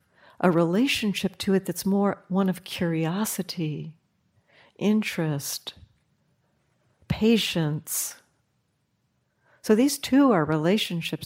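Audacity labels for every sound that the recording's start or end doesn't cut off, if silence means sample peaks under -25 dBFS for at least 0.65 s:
4.810000	5.690000	sound
7.100000	8.090000	sound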